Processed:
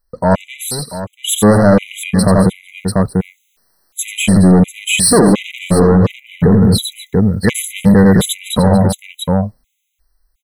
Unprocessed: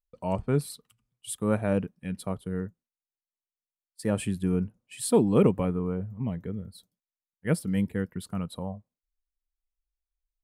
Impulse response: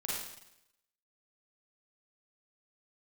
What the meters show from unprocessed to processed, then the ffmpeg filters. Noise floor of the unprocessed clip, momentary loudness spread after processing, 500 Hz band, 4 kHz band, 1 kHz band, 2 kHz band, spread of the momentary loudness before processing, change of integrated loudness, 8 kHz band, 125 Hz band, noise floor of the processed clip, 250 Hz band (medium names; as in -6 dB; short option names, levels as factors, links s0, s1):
under -85 dBFS, 13 LU, +15.0 dB, +25.0 dB, +19.0 dB, +20.5 dB, 15 LU, +16.0 dB, +22.0 dB, +17.5 dB, -64 dBFS, +17.5 dB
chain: -filter_complex "[0:a]asoftclip=type=tanh:threshold=0.0473,dynaudnorm=f=430:g=9:m=5.96,asplit=2[s0][s1];[s1]aecho=0:1:87|232|690:0.531|0.168|0.237[s2];[s0][s2]amix=inputs=2:normalize=0,alimiter=level_in=14.1:limit=0.891:release=50:level=0:latency=1,afftfilt=real='re*gt(sin(2*PI*1.4*pts/sr)*(1-2*mod(floor(b*sr/1024/2000),2)),0)':imag='im*gt(sin(2*PI*1.4*pts/sr)*(1-2*mod(floor(b*sr/1024/2000),2)),0)':win_size=1024:overlap=0.75,volume=0.841"